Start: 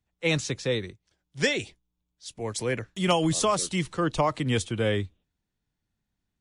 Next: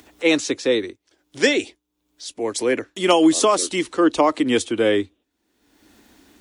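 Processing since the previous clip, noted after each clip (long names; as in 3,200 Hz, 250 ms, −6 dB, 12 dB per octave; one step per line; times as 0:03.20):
high-pass filter 41 Hz
low shelf with overshoot 210 Hz −11 dB, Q 3
upward compression, threshold −37 dBFS
level +6 dB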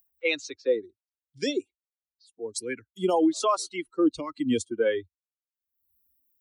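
spectral dynamics exaggerated over time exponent 2
brickwall limiter −12.5 dBFS, peak gain reduction 8 dB
phaser with staggered stages 0.64 Hz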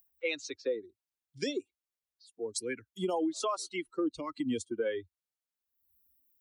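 downward compressor 2.5 to 1, threshold −33 dBFS, peak gain reduction 10.5 dB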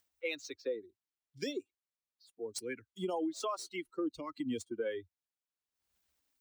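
running median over 3 samples
level −4 dB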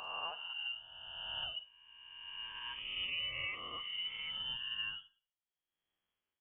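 peak hold with a rise ahead of every peak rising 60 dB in 2.01 s
voice inversion scrambler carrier 3,300 Hz
four-comb reverb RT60 0.38 s, combs from 32 ms, DRR 12.5 dB
level −7.5 dB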